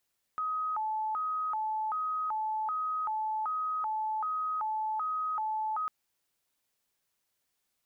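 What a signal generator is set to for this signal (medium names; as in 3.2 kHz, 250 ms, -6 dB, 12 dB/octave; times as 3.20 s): siren hi-lo 868–1260 Hz 1.3 per s sine -29.5 dBFS 5.50 s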